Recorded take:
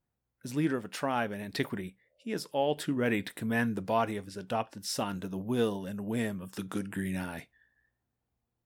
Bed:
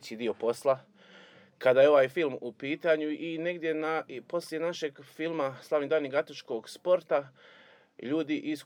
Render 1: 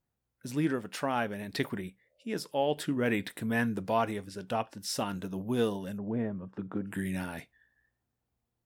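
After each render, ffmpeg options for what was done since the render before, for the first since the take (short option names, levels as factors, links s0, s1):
-filter_complex "[0:a]asplit=3[s0][s1][s2];[s0]afade=t=out:st=5.97:d=0.02[s3];[s1]lowpass=1100,afade=t=in:st=5.97:d=0.02,afade=t=out:st=6.86:d=0.02[s4];[s2]afade=t=in:st=6.86:d=0.02[s5];[s3][s4][s5]amix=inputs=3:normalize=0"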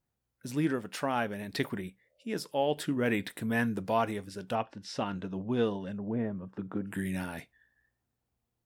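-filter_complex "[0:a]asettb=1/sr,asplit=3[s0][s1][s2];[s0]atrim=end=4.554[s3];[s1]atrim=start=4.55:end=6.27,asetpts=PTS-STARTPTS,afade=t=in:d=0.004:c=qsin,afade=t=out:st=1.716:d=0.004:c=qsin,lowpass=3800[s4];[s2]atrim=start=6.266[s5];[s3][s4]acrossfade=d=0.004:c1=hsin:c2=qsin[s6];[s6][s5]acrossfade=d=0.004:c1=qsin:c2=hsin"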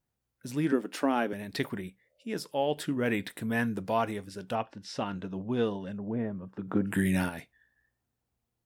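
-filter_complex "[0:a]asettb=1/sr,asplit=3[s0][s1][s2];[s0]atrim=end=0.724[s3];[s1]atrim=start=0.72:end=1.33,asetpts=PTS-STARTPTS,afade=t=in:d=0.004:c=qsin,afade=t=out:st=0.606:d=0.004:c=qsin,highpass=f=290:t=q:w=3.4[s4];[s2]atrim=start=1.326[s5];[s3][s4]acrossfade=d=0.004:c1=hsin:c2=qsin[s6];[s6][s5]acrossfade=d=0.004:c1=qsin:c2=hsin,asplit=3[s7][s8][s9];[s7]afade=t=out:st=6.67:d=0.02[s10];[s8]acontrast=82,afade=t=in:st=6.67:d=0.02,afade=t=out:st=7.28:d=0.02[s11];[s9]afade=t=in:st=7.28:d=0.02[s12];[s10][s11][s12]amix=inputs=3:normalize=0"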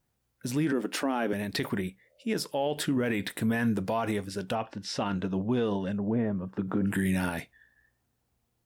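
-af "acontrast=67,alimiter=limit=0.106:level=0:latency=1:release=39"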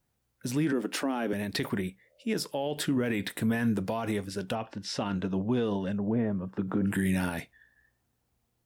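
-filter_complex "[0:a]acrossover=split=410|3000[s0][s1][s2];[s1]acompressor=threshold=0.0224:ratio=2.5[s3];[s0][s3][s2]amix=inputs=3:normalize=0"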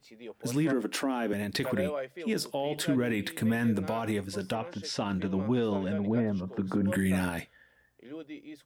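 -filter_complex "[1:a]volume=0.237[s0];[0:a][s0]amix=inputs=2:normalize=0"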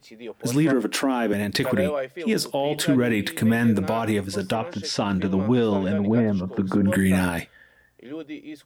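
-af "volume=2.37"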